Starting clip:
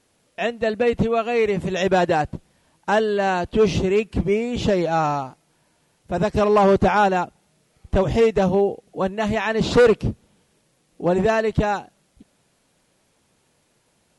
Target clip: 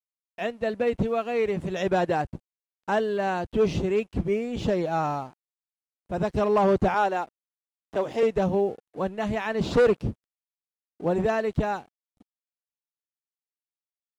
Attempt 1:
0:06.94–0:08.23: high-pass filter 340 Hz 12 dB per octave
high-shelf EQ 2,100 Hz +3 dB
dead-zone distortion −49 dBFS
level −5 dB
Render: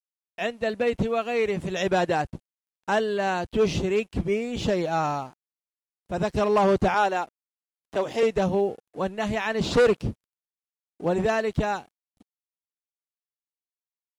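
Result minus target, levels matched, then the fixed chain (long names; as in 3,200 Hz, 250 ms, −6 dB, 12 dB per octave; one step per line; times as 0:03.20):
4,000 Hz band +5.0 dB
0:06.94–0:08.23: high-pass filter 340 Hz 12 dB per octave
high-shelf EQ 2,100 Hz −4.5 dB
dead-zone distortion −49 dBFS
level −5 dB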